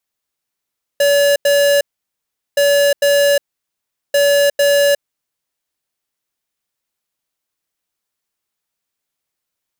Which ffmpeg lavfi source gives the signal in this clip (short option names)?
-f lavfi -i "aevalsrc='0.251*(2*lt(mod(570*t,1),0.5)-1)*clip(min(mod(mod(t,1.57),0.45),0.36-mod(mod(t,1.57),0.45))/0.005,0,1)*lt(mod(t,1.57),0.9)':d=4.71:s=44100"